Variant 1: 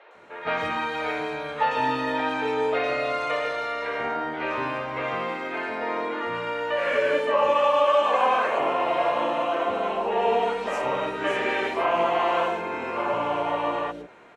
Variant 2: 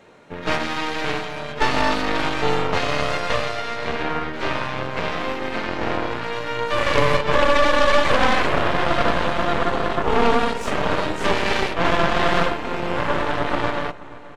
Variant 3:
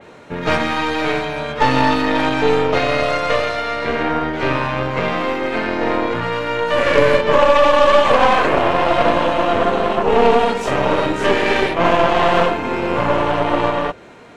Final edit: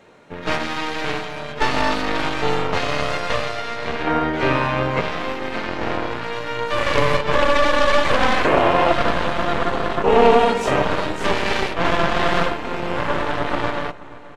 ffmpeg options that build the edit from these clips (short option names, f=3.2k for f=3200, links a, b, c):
-filter_complex "[2:a]asplit=3[a][b][c];[1:a]asplit=4[d][e][f][g];[d]atrim=end=4.072[h];[a]atrim=start=4.068:end=5.012[i];[e]atrim=start=5.008:end=8.452[j];[b]atrim=start=8.448:end=8.922[k];[f]atrim=start=8.918:end=10.042[l];[c]atrim=start=10.038:end=10.832[m];[g]atrim=start=10.828[n];[h][i]acrossfade=d=0.004:c1=hsin:c2=hsin[o];[o][j]acrossfade=d=0.004:c1=hsin:c2=hsin[p];[p][k]acrossfade=d=0.004:c1=hsin:c2=hsin[q];[q][l]acrossfade=d=0.004:c1=hsin:c2=hsin[r];[r][m]acrossfade=d=0.004:c1=hsin:c2=hsin[s];[s][n]acrossfade=d=0.004:c1=hsin:c2=hsin"